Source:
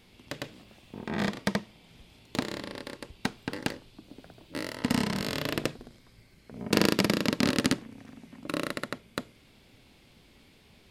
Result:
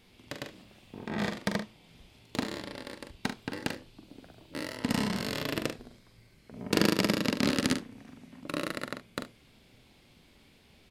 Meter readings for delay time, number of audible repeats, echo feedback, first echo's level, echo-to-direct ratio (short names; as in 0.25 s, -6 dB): 43 ms, 1, no steady repeat, -7.0 dB, -6.5 dB